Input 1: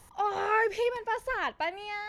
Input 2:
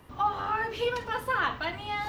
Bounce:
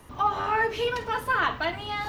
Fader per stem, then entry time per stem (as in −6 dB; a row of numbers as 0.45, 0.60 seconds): −3.0, +2.5 decibels; 0.00, 0.00 seconds